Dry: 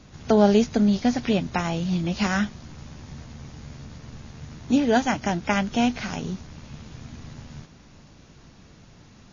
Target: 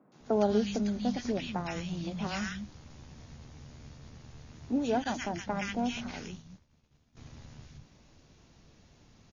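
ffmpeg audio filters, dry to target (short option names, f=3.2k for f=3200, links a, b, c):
-filter_complex "[0:a]acrossover=split=180|1400[a][b][c];[c]adelay=120[d];[a]adelay=200[e];[e][b][d]amix=inputs=3:normalize=0,asettb=1/sr,asplit=3[f][g][h];[f]atrim=end=5.044[i];[g]atrim=start=5.04:end=7.17,asetpts=PTS-STARTPTS,afade=t=in:d=0.004:c=qsin,afade=t=out:st=2.126:d=0.004:c=qsin,agate=range=-33dB:threshold=-29dB:ratio=3:detection=peak[j];[h]atrim=start=7.166[k];[i][j]acrossfade=d=0.004:c1=hsin:c2=qsin[l];[l][k]acrossfade=d=0.004:c1=qsin:c2=hsin,volume=-8dB"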